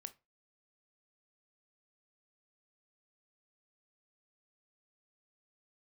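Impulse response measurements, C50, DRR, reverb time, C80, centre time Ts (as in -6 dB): 19.0 dB, 11.0 dB, not exponential, 27.5 dB, 5 ms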